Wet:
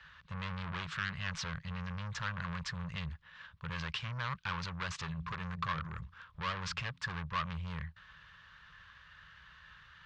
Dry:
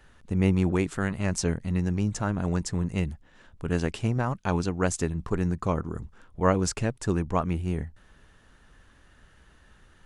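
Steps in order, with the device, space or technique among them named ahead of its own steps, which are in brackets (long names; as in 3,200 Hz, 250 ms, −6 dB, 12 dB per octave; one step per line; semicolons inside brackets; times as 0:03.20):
0:05.02–0:07.14: hum removal 85.64 Hz, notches 3
scooped metal amplifier (tube saturation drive 34 dB, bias 0.5; loudspeaker in its box 83–4,200 Hz, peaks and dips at 160 Hz +8 dB, 290 Hz −4 dB, 420 Hz −3 dB, 720 Hz −9 dB, 1,100 Hz +8 dB, 1,600 Hz +4 dB; guitar amp tone stack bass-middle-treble 10-0-10)
level +10 dB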